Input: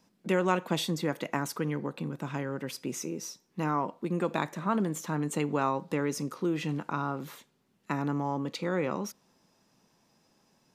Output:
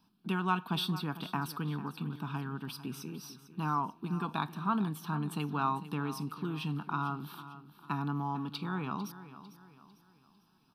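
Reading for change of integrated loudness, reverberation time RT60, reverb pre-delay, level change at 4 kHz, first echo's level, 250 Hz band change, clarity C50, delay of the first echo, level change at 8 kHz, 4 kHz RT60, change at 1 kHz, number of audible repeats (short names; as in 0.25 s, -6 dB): -3.5 dB, none, none, -1.0 dB, -14.5 dB, -4.0 dB, none, 0.449 s, -11.5 dB, none, -1.0 dB, 3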